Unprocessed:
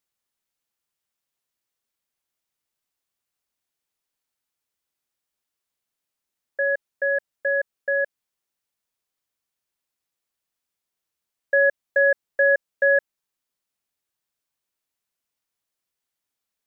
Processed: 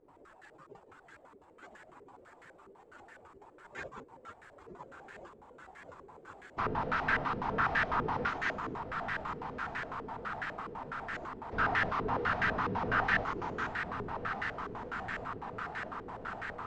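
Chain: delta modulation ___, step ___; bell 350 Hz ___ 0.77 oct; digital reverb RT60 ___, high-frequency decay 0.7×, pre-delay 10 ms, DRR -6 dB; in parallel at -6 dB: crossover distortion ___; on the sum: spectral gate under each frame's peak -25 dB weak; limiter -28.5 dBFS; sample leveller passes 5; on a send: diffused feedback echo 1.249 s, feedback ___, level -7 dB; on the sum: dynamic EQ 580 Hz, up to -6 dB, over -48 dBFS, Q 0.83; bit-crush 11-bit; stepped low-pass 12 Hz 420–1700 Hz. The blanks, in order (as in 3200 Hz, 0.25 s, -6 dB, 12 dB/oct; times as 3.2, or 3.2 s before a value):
32 kbps, -37.5 dBFS, -8.5 dB, 1.4 s, -51 dBFS, 70%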